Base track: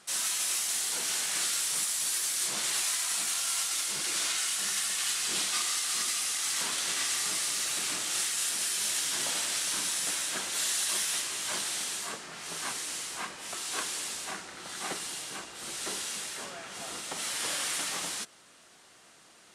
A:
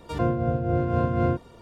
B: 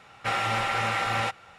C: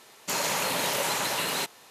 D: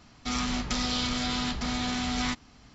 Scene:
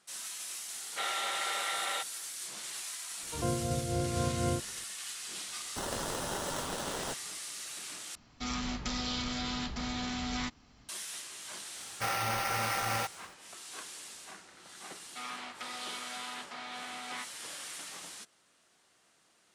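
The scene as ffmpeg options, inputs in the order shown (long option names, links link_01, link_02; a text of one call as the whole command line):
ffmpeg -i bed.wav -i cue0.wav -i cue1.wav -i cue2.wav -i cue3.wav -filter_complex "[2:a]asplit=2[link_01][link_02];[4:a]asplit=2[link_03][link_04];[0:a]volume=-11dB[link_05];[link_01]highpass=frequency=440:width=0.5412,highpass=frequency=440:width=1.3066,equalizer=frequency=520:width_type=q:width=4:gain=-9,equalizer=frequency=810:width_type=q:width=4:gain=-8,equalizer=frequency=1100:width_type=q:width=4:gain=-8,equalizer=frequency=1600:width_type=q:width=4:gain=-6,equalizer=frequency=2500:width_type=q:width=4:gain=-10,equalizer=frequency=3700:width_type=q:width=4:gain=7,lowpass=frequency=4400:width=0.5412,lowpass=frequency=4400:width=1.3066[link_06];[3:a]acrusher=samples=19:mix=1:aa=0.000001[link_07];[link_02]acrusher=samples=6:mix=1:aa=0.000001[link_08];[link_04]highpass=650,lowpass=3000[link_09];[link_05]asplit=2[link_10][link_11];[link_10]atrim=end=8.154[link_12];[link_03]atrim=end=2.74,asetpts=PTS-STARTPTS,volume=-6dB[link_13];[link_11]atrim=start=10.886[link_14];[link_06]atrim=end=1.58,asetpts=PTS-STARTPTS,volume=-2dB,afade=type=in:duration=0.004:curve=hsin,afade=type=out:start_time=1.576:duration=0.004:curve=hsin,adelay=720[link_15];[1:a]atrim=end=1.61,asetpts=PTS-STARTPTS,volume=-8.5dB,afade=type=in:duration=0.004:curve=hsin,afade=type=out:start_time=1.606:duration=0.004:curve=hsin,adelay=3230[link_16];[link_07]atrim=end=1.9,asetpts=PTS-STARTPTS,volume=-9.5dB,afade=type=in:duration=0.004:curve=hsin,afade=type=out:start_time=1.896:duration=0.004:curve=hsin,adelay=5480[link_17];[link_08]atrim=end=1.58,asetpts=PTS-STARTPTS,volume=-5.5dB,afade=type=in:duration=0.004:curve=hsin,afade=type=out:start_time=1.576:duration=0.004:curve=hsin,adelay=11760[link_18];[link_09]atrim=end=2.74,asetpts=PTS-STARTPTS,volume=-6.5dB,afade=type=in:duration=0.004:curve=hsin,afade=type=out:start_time=2.736:duration=0.004:curve=hsin,adelay=14900[link_19];[link_12][link_13]acrossfade=duration=0.004:curve1=hsin:curve2=hsin[link_20];[link_20][link_14]acrossfade=duration=0.004:curve1=hsin:curve2=hsin[link_21];[link_21][link_15][link_16][link_17][link_18][link_19]amix=inputs=6:normalize=0" out.wav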